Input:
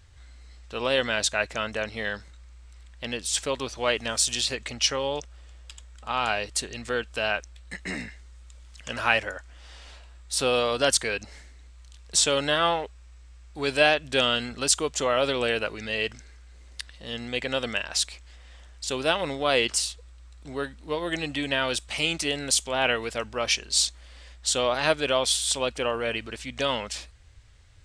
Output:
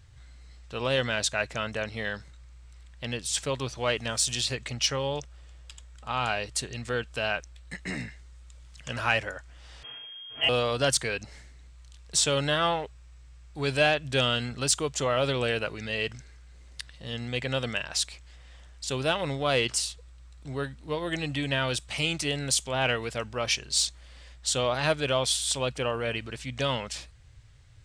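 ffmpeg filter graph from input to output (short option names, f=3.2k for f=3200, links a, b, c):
-filter_complex "[0:a]asettb=1/sr,asplit=3[a][b][c];[a]atrim=end=9.834[d];[b]atrim=start=9.83:end=10.49,asetpts=PTS-STARTPTS,afade=t=in:d=0.004:c=qsin,afade=t=out:st=0.656:d=0.004:c=qsin,lowshelf=f=240:g=6.5,aecho=1:1:5.3:0.93,atrim=end_sample=29106,lowpass=f=2.8k:t=q:w=0.5098,lowpass=f=2.8k:t=q:w=0.6013,lowpass=f=2.8k:t=q:w=0.9,lowpass=f=2.8k:t=q:w=2.563,afreqshift=-3300[e];[c]atrim=start=10.486[f];[d][e]acrossfade=d=0.004:c1=hsin:c2=qsin[g];[g][f]acrossfade=d=0.004:c1=qsin:c2=hsin,equalizer=f=130:w=2.5:g=12,acontrast=43,volume=-8dB"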